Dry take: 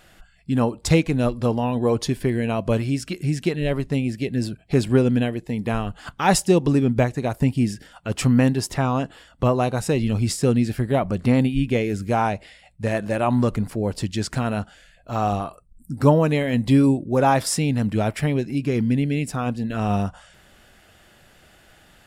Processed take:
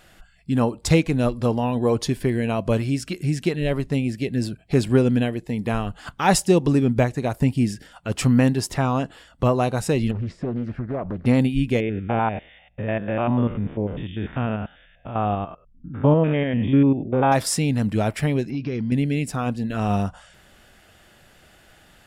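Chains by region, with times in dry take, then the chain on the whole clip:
10.11–11.26 s: compression 2.5:1, threshold -25 dBFS + low-pass 1.7 kHz + loudspeaker Doppler distortion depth 0.52 ms
11.80–17.32 s: spectrogram pixelated in time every 100 ms + brick-wall FIR low-pass 3.7 kHz
18.50–18.92 s: compression 5:1, threshold -22 dBFS + brick-wall FIR low-pass 6.4 kHz
whole clip: none

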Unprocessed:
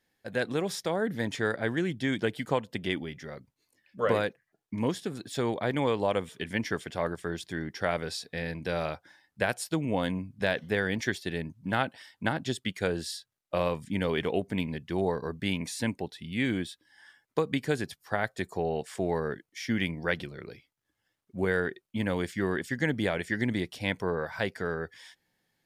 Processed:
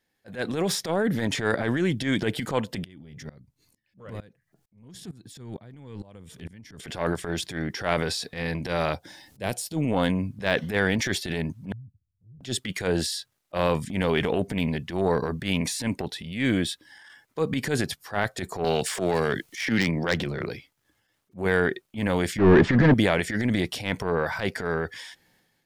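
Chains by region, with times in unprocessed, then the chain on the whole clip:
2.84–6.80 s: tone controls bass +15 dB, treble +5 dB + compression 8:1, threshold -31 dBFS + sawtooth tremolo in dB swelling 2.2 Hz, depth 30 dB
8.93–9.77 s: peaking EQ 1.4 kHz -13 dB 1.6 oct + upward compressor, threshold -48 dBFS
11.72–12.41 s: inverse Chebyshev low-pass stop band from 640 Hz, stop band 80 dB + compression 2:1, threshold -59 dBFS
18.64–20.47 s: self-modulated delay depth 0.12 ms + three bands compressed up and down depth 100%
22.38–22.94 s: waveshaping leveller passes 5 + tape spacing loss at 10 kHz 42 dB
whole clip: de-esser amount 70%; transient shaper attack -12 dB, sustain +6 dB; level rider gain up to 6 dB

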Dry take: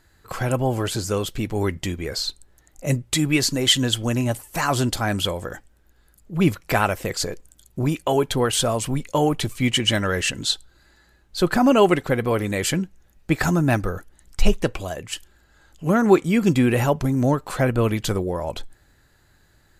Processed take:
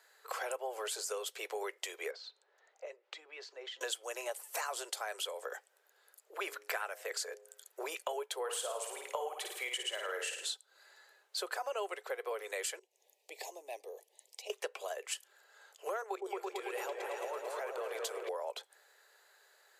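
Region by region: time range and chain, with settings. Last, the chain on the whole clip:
2.11–3.81 s: compression 8:1, threshold -35 dBFS + distance through air 200 m
6.34–7.85 s: peaking EQ 1.6 kHz +6.5 dB 0.6 oct + de-hum 104.1 Hz, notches 8
8.39–10.51 s: peaking EQ 5.3 kHz -5.5 dB 1.3 oct + flutter echo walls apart 9.3 m, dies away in 0.54 s
12.79–14.50 s: Butterworth band-stop 1.4 kHz, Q 1 + compression 2:1, threshold -44 dBFS
16.03–18.29 s: hum notches 60/120/180/240/300/360/420 Hz + level held to a coarse grid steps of 14 dB + delay with an opening low-pass 111 ms, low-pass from 400 Hz, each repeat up 2 oct, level 0 dB
whole clip: steep high-pass 410 Hz 72 dB/octave; dynamic bell 8.8 kHz, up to +5 dB, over -40 dBFS, Q 1.1; compression 6:1, threshold -34 dBFS; trim -2.5 dB

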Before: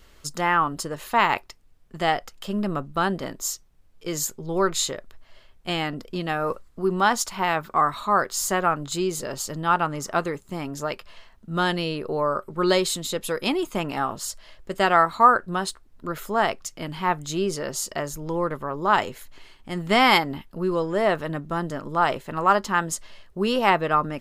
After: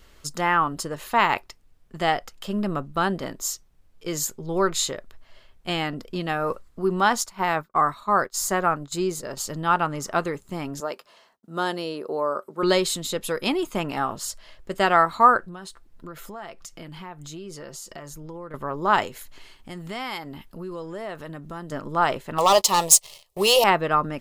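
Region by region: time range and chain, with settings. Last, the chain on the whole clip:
7.21–9.37 s: expander -29 dBFS + peaking EQ 3 kHz -4.5 dB 0.59 oct
10.80–12.63 s: high-pass 290 Hz + expander -58 dBFS + peaking EQ 2.4 kHz -7.5 dB 1.5 oct
15.39–18.54 s: comb 5.9 ms, depth 32% + compression 4:1, threshold -37 dBFS
19.07–21.72 s: treble shelf 4.6 kHz +5 dB + compression 2.5:1, threshold -36 dBFS
22.38–23.64 s: tilt EQ +3 dB/octave + waveshaping leveller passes 3 + static phaser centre 640 Hz, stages 4
whole clip: none

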